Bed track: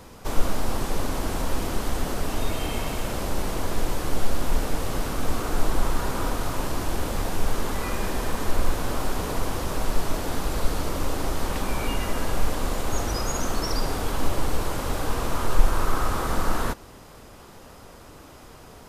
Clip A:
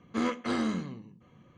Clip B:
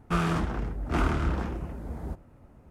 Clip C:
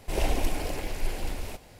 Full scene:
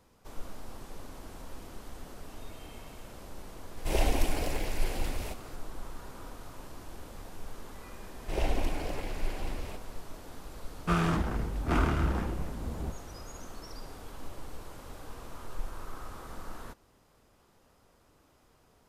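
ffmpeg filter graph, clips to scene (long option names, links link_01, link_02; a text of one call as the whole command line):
ffmpeg -i bed.wav -i cue0.wav -i cue1.wav -i cue2.wav -filter_complex "[3:a]asplit=2[link_01][link_02];[0:a]volume=-18.5dB[link_03];[link_02]highshelf=frequency=5900:gain=-10.5[link_04];[link_01]atrim=end=1.79,asetpts=PTS-STARTPTS,volume=-0.5dB,afade=type=in:duration=0.004:curve=hsin,afade=type=out:start_time=1.786:duration=0.004:curve=hsin,adelay=166257S[link_05];[link_04]atrim=end=1.79,asetpts=PTS-STARTPTS,volume=-3dB,afade=type=in:duration=0.004:curve=hsin,afade=type=out:start_time=1.786:duration=0.004:curve=hsin,adelay=8200[link_06];[2:a]atrim=end=2.7,asetpts=PTS-STARTPTS,volume=-1dB,afade=type=in:duration=0.004:curve=hsin,afade=type=out:start_time=2.696:duration=0.004:curve=hsin,adelay=10770[link_07];[link_03][link_05][link_06][link_07]amix=inputs=4:normalize=0" out.wav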